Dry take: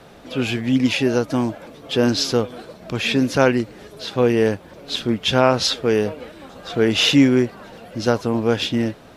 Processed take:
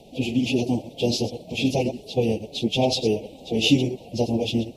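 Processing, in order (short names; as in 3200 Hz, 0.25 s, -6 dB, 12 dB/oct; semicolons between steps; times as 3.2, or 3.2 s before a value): reverse delay 0.131 s, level -10 dB; Chebyshev band-stop 790–2600 Hz, order 3; plain phase-vocoder stretch 0.52×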